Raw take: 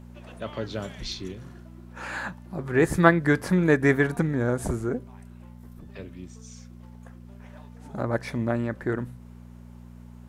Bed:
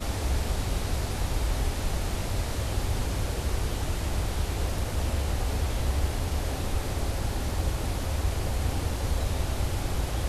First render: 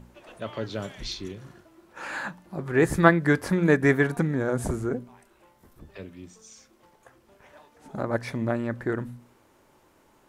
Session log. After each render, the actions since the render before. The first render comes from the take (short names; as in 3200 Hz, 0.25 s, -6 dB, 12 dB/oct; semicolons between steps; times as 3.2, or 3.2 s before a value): de-hum 60 Hz, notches 4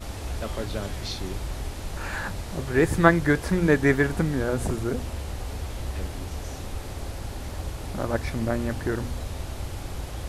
add bed -5 dB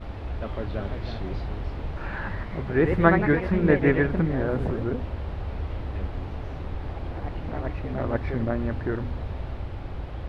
echoes that change speed 0.404 s, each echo +2 st, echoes 3, each echo -6 dB; air absorption 380 m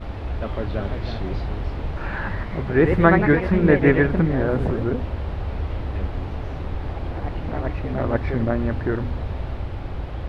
gain +4.5 dB; limiter -2 dBFS, peak gain reduction 2.5 dB